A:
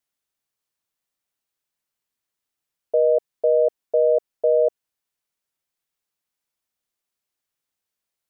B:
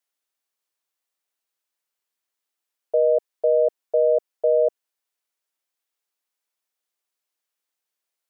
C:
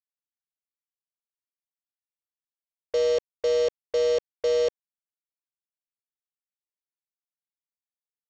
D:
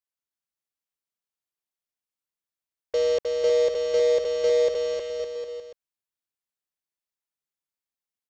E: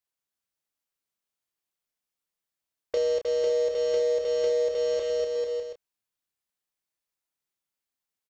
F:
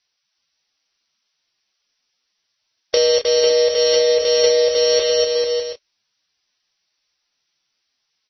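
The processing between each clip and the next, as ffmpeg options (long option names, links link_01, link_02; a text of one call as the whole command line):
ffmpeg -i in.wav -af "highpass=350" out.wav
ffmpeg -i in.wav -af "aecho=1:1:2.3:0.87,aresample=16000,acrusher=bits=3:mix=0:aa=0.5,aresample=44100,volume=-6.5dB" out.wav
ffmpeg -i in.wav -af "aecho=1:1:310|558|756.4|915.1|1042:0.631|0.398|0.251|0.158|0.1" out.wav
ffmpeg -i in.wav -filter_complex "[0:a]acompressor=threshold=-28dB:ratio=6,asplit=2[link_01][link_02];[link_02]adelay=29,volume=-7dB[link_03];[link_01][link_03]amix=inputs=2:normalize=0,volume=2.5dB" out.wav
ffmpeg -i in.wav -af "crystalizer=i=7.5:c=0,volume=8.5dB" -ar 24000 -c:a libmp3lame -b:a 24k out.mp3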